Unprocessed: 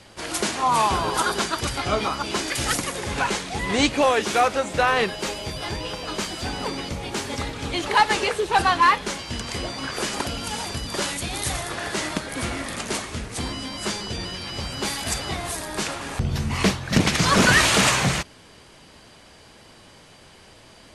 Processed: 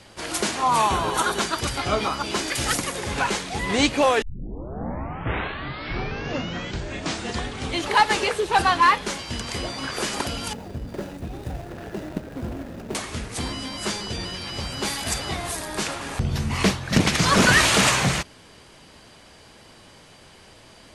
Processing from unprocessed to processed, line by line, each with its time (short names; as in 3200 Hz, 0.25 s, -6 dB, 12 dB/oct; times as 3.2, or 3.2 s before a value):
0.79–1.41 Butterworth band-stop 4900 Hz, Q 7.8
4.22 tape start 3.63 s
10.53–12.95 median filter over 41 samples